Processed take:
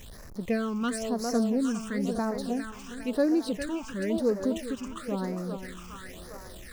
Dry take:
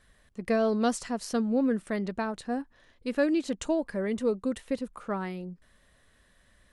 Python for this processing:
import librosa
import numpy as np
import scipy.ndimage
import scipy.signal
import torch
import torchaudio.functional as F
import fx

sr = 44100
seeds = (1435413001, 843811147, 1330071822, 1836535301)

y = x + 0.5 * 10.0 ** (-40.0 / 20.0) * np.sign(x)
y = fx.echo_thinned(y, sr, ms=406, feedback_pct=69, hz=270.0, wet_db=-6.0)
y = fx.phaser_stages(y, sr, stages=8, low_hz=530.0, high_hz=3200.0, hz=0.98, feedback_pct=25)